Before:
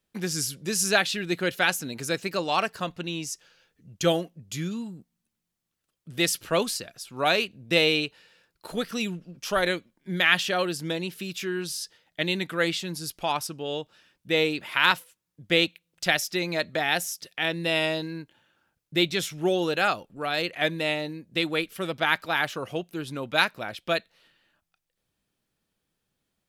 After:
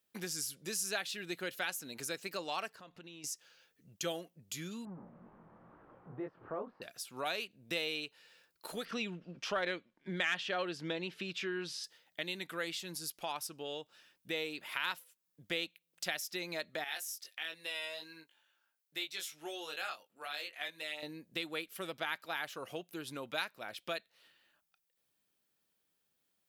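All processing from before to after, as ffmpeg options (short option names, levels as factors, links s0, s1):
-filter_complex "[0:a]asettb=1/sr,asplit=3[s0][s1][s2];[s0]atrim=end=2.734[s3];[s1]atrim=start=2.73:end=3.24,asetpts=PTS-STARTPTS,afade=t=in:d=0.004:c=qsin,afade=t=out:st=0.506:d=0.004:c=qsin,lowpass=f=3200:p=1,acompressor=threshold=0.00794:ratio=6:attack=3.2:release=140:knee=1:detection=peak[s4];[s2]atrim=start=3.236[s5];[s3][s4]acrossfade=d=0.004:c1=hsin:c2=qsin[s6];[s6][s5]acrossfade=d=0.004:c1=qsin:c2=hsin,asettb=1/sr,asplit=3[s7][s8][s9];[s7]atrim=end=4.854[s10];[s8]atrim=start=4.85:end=6.82,asetpts=PTS-STARTPTS,afade=t=in:d=0.004:c=qsin,afade=t=out:st=1.966:d=0.004:c=qsin,aeval=exprs='val(0)+0.5*0.0168*sgn(val(0))':c=same,lowpass=f=1200:w=0.5412,lowpass=f=1200:w=1.3066,flanger=delay=19.5:depth=7.8:speed=2.1[s11];[s9]atrim=start=6.816[s12];[s10][s11]acrossfade=d=0.004:c1=hsin:c2=qsin[s13];[s13][s12]acrossfade=d=0.004:c1=qsin:c2=hsin,asettb=1/sr,asplit=3[s14][s15][s16];[s14]atrim=end=8.854[s17];[s15]atrim=start=8.85:end=11.84,asetpts=PTS-STARTPTS,afade=t=in:d=0.004:c=qsin,afade=t=out:st=2.986:d=0.004:c=qsin,lowpass=3400,acontrast=77[s18];[s16]atrim=start=11.836[s19];[s17][s18]acrossfade=d=0.004:c1=hsin:c2=qsin[s20];[s20][s19]acrossfade=d=0.004:c1=qsin:c2=hsin,asettb=1/sr,asplit=3[s21][s22][s23];[s21]atrim=end=16.844[s24];[s22]atrim=start=16.84:end=21.03,asetpts=PTS-STARTPTS,afade=t=in:d=0.004:c=qsin,afade=t=out:st=4.186:d=0.004:c=qsin,highpass=f=1100:p=1,flanger=delay=19:depth=2.1:speed=1.5[s25];[s23]atrim=start=21.026[s26];[s24][s25]acrossfade=d=0.004:c1=hsin:c2=qsin[s27];[s27][s26]acrossfade=d=0.004:c1=qsin:c2=hsin,lowpass=f=4000:p=1,aemphasis=mode=production:type=bsi,acompressor=threshold=0.0126:ratio=2,volume=0.631"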